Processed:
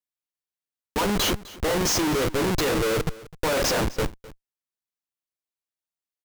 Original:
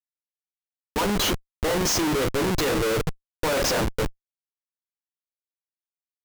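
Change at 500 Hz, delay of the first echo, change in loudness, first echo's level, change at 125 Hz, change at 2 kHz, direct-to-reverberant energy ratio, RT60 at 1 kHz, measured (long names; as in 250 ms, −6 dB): 0.0 dB, 256 ms, 0.0 dB, −19.5 dB, 0.0 dB, 0.0 dB, no reverb audible, no reverb audible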